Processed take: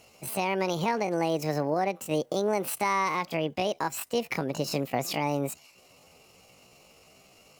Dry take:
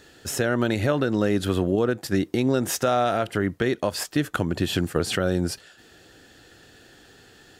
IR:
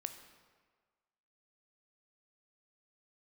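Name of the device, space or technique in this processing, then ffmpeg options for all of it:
chipmunk voice: -af "asetrate=70004,aresample=44100,atempo=0.629961,volume=-5dB"

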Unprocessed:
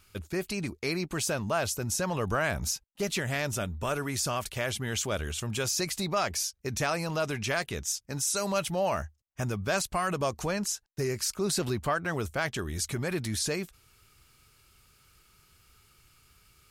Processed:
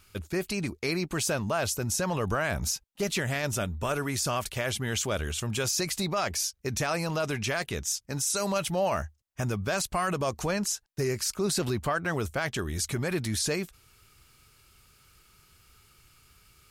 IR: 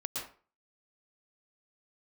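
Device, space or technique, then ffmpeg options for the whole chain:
clipper into limiter: -af "asoftclip=type=hard:threshold=-17.5dB,alimiter=limit=-21dB:level=0:latency=1:release=13,volume=2dB"

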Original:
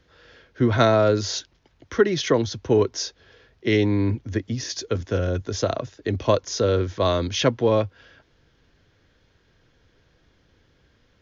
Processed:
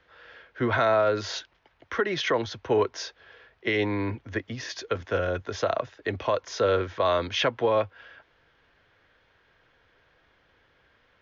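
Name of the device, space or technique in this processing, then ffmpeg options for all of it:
DJ mixer with the lows and highs turned down: -filter_complex "[0:a]acrossover=split=550 3200:gain=0.2 1 0.141[a][b][c];[a][b][c]amix=inputs=3:normalize=0,alimiter=limit=-18dB:level=0:latency=1:release=91,volume=4.5dB"

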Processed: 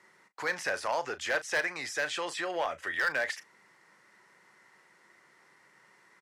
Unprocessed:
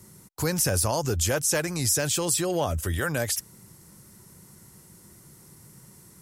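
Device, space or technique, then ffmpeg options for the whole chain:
megaphone: -filter_complex "[0:a]highpass=690,lowpass=2.7k,equalizer=f=1.9k:t=o:w=0.51:g=9,asoftclip=type=hard:threshold=-23dB,asplit=2[a][b];[b]adelay=37,volume=-14dB[c];[a][c]amix=inputs=2:normalize=0"

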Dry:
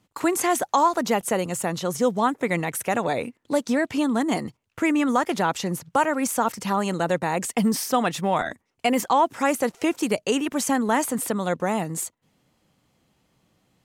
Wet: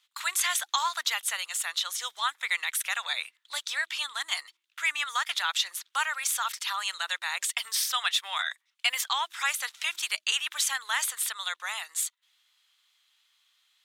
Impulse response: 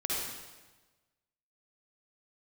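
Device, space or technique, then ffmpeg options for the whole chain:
headphones lying on a table: -af "highpass=f=1.3k:w=0.5412,highpass=f=1.3k:w=1.3066,equalizer=f=3.6k:t=o:w=0.51:g=11.5,bandreject=f=113.3:t=h:w=4,bandreject=f=226.6:t=h:w=4,bandreject=f=339.9:t=h:w=4"

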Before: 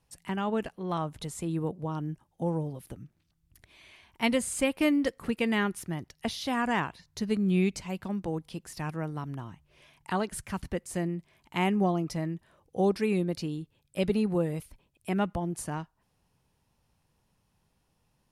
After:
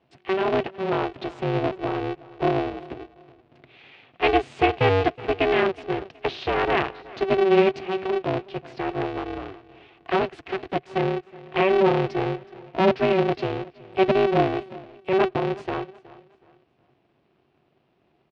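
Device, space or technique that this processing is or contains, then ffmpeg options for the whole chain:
ring modulator pedal into a guitar cabinet: -filter_complex "[0:a]asettb=1/sr,asplit=3[a][b][c];[a]atrim=end=10.214[d];[b]atrim=start=10.21:end=10.85,asetpts=PTS-STARTPTS,afade=t=in:d=0.004:c=qsin,afade=t=out:st=0.636:d=0.004:c=qsin,highpass=110[e];[c]atrim=start=10.846[f];[d][e]acrossfade=d=0.004:c1=hsin:c2=qsin[g];[g][f]acrossfade=d=0.004:c1=qsin:c2=hsin,aecho=1:1:370|740|1110:0.1|0.033|0.0109,aeval=exprs='val(0)*sgn(sin(2*PI*190*n/s))':c=same,highpass=79,equalizer=f=140:t=q:w=4:g=6,equalizer=f=380:t=q:w=4:g=8,equalizer=f=700:t=q:w=4:g=7,equalizer=f=2.6k:t=q:w=4:g=4,lowpass=f=3.8k:w=0.5412,lowpass=f=3.8k:w=1.3066,volume=3.5dB"

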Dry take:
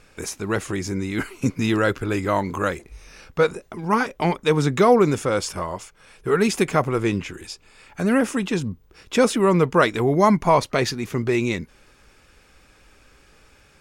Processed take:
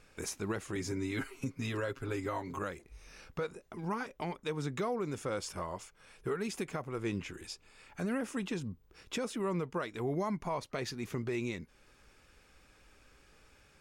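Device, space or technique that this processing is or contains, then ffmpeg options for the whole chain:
stacked limiters: -filter_complex "[0:a]asettb=1/sr,asplit=3[a][b][c];[a]atrim=end=0.754[d];[b]atrim=start=0.75:end=2.59,asetpts=PTS-STARTPTS,afade=t=in:d=0.004:c=qsin,afade=t=out:st=1.836:d=0.004:c=qsin,aecho=1:1:7.4:0.88,atrim=end_sample=81144[e];[c]atrim=start=2.586[f];[d][e]acrossfade=d=0.004:c1=hsin:c2=qsin[g];[g][f]acrossfade=d=0.004:c1=qsin:c2=hsin,alimiter=limit=-10.5dB:level=0:latency=1:release=465,alimiter=limit=-17.5dB:level=0:latency=1:release=434,volume=-8.5dB"

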